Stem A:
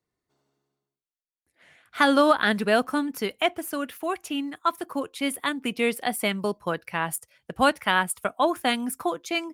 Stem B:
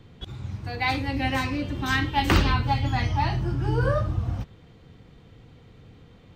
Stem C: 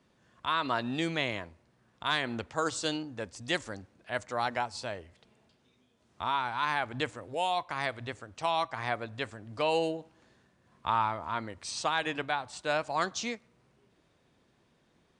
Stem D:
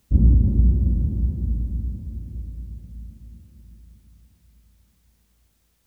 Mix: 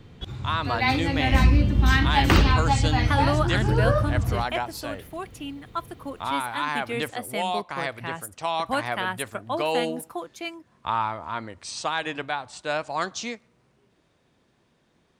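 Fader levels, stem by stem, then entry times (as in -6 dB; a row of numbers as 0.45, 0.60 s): -6.5, +2.0, +2.5, -3.5 dB; 1.10, 0.00, 0.00, 1.20 s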